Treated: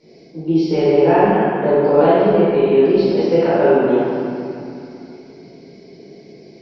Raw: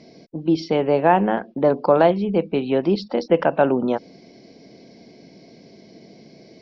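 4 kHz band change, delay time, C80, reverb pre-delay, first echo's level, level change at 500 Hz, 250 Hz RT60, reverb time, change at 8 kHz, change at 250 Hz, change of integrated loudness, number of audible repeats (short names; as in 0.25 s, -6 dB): +2.0 dB, none, -2.5 dB, 12 ms, none, +6.5 dB, 3.6 s, 2.7 s, n/a, +4.5 dB, +5.0 dB, none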